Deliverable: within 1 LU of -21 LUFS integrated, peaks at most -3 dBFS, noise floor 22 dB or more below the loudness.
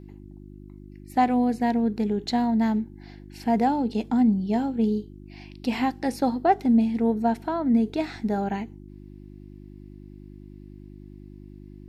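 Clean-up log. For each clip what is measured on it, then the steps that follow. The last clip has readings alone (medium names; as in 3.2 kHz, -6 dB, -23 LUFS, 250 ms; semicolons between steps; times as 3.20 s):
hum 50 Hz; highest harmonic 350 Hz; hum level -43 dBFS; loudness -24.5 LUFS; peak level -9.0 dBFS; loudness target -21.0 LUFS
-> de-hum 50 Hz, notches 7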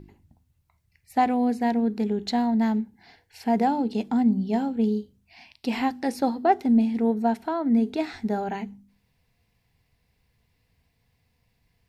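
hum not found; loudness -25.0 LUFS; peak level -9.0 dBFS; loudness target -21.0 LUFS
-> trim +4 dB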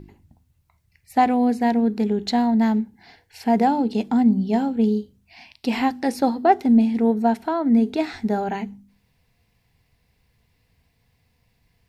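loudness -21.0 LUFS; peak level -5.0 dBFS; noise floor -67 dBFS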